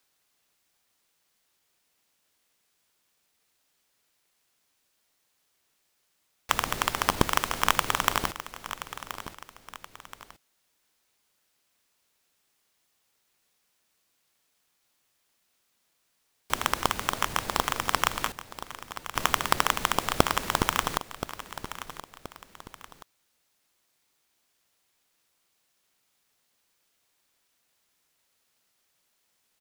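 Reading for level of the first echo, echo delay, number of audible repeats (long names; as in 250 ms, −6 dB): −13.0 dB, 1,026 ms, 2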